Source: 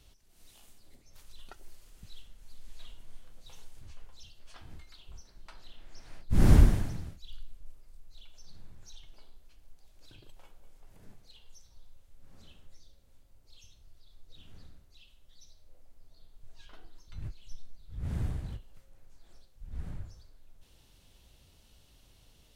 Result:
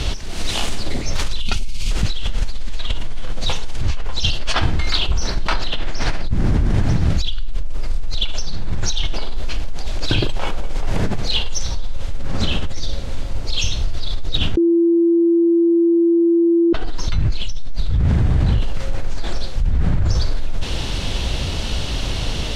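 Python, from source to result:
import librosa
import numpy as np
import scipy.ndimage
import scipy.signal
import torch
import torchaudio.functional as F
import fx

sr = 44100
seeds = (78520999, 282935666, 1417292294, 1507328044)

y = fx.spec_box(x, sr, start_s=1.4, length_s=0.51, low_hz=240.0, high_hz=2100.0, gain_db=-14)
y = fx.edit(y, sr, fx.bleep(start_s=14.57, length_s=2.16, hz=338.0, db=-12.0), tone=tone)
y = scipy.signal.sosfilt(scipy.signal.butter(2, 5300.0, 'lowpass', fs=sr, output='sos'), y)
y = fx.env_flatten(y, sr, amount_pct=100)
y = y * 10.0 ** (-1.0 / 20.0)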